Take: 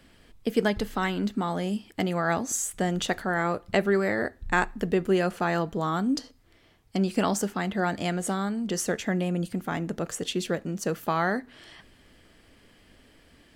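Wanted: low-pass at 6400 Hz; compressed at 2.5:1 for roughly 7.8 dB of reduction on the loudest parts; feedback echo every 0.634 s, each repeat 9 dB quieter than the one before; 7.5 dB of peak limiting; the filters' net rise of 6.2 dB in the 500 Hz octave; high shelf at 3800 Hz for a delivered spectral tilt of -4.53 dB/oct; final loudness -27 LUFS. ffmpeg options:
-af "lowpass=6.4k,equalizer=f=500:t=o:g=8,highshelf=f=3.8k:g=6,acompressor=threshold=-25dB:ratio=2.5,alimiter=limit=-19dB:level=0:latency=1,aecho=1:1:634|1268|1902|2536:0.355|0.124|0.0435|0.0152,volume=3dB"

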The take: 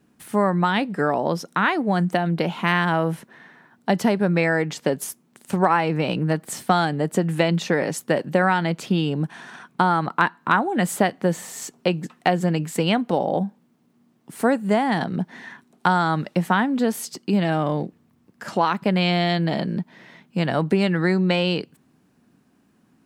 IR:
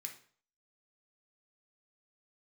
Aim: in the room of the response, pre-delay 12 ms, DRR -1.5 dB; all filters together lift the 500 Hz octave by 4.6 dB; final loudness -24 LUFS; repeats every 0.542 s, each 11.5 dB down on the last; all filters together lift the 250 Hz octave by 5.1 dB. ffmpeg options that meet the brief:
-filter_complex "[0:a]equalizer=f=250:t=o:g=6.5,equalizer=f=500:t=o:g=4,aecho=1:1:542|1084|1626:0.266|0.0718|0.0194,asplit=2[a][b];[1:a]atrim=start_sample=2205,adelay=12[c];[b][c]afir=irnorm=-1:irlink=0,volume=5.5dB[d];[a][d]amix=inputs=2:normalize=0,volume=-8dB"

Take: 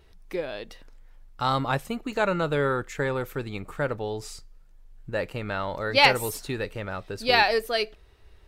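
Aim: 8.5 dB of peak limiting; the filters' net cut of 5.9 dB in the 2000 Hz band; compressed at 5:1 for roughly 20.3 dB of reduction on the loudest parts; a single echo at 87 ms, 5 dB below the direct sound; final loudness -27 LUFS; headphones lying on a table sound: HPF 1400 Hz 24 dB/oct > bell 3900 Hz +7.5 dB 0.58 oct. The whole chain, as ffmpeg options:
-af "equalizer=f=2k:t=o:g=-8,acompressor=threshold=-40dB:ratio=5,alimiter=level_in=9.5dB:limit=-24dB:level=0:latency=1,volume=-9.5dB,highpass=f=1.4k:w=0.5412,highpass=f=1.4k:w=1.3066,equalizer=f=3.9k:t=o:w=0.58:g=7.5,aecho=1:1:87:0.562,volume=20.5dB"

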